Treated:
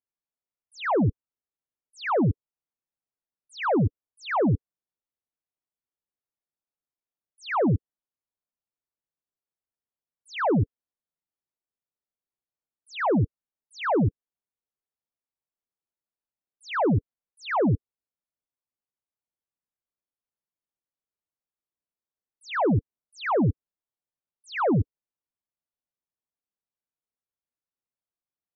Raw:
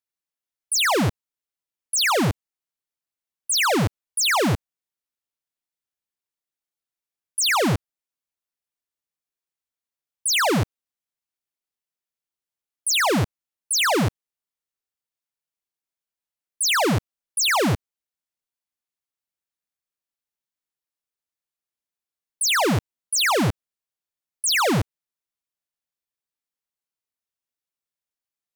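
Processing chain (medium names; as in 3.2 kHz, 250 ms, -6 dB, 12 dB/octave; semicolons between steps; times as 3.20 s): spectral gate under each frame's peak -15 dB strong; Bessel low-pass 940 Hz, order 2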